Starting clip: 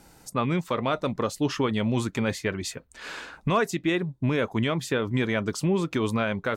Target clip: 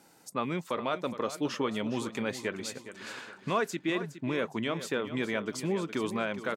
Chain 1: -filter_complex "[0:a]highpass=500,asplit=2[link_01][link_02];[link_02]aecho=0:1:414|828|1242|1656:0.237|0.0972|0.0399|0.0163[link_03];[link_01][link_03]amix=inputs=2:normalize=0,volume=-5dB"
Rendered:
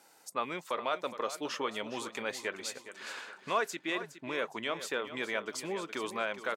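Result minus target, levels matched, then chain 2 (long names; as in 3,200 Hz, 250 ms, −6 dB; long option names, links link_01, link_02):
250 Hz band −6.5 dB
-filter_complex "[0:a]highpass=200,asplit=2[link_01][link_02];[link_02]aecho=0:1:414|828|1242|1656:0.237|0.0972|0.0399|0.0163[link_03];[link_01][link_03]amix=inputs=2:normalize=0,volume=-5dB"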